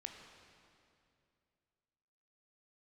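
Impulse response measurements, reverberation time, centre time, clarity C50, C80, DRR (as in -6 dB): 2.5 s, 63 ms, 4.5 dB, 5.0 dB, 3.0 dB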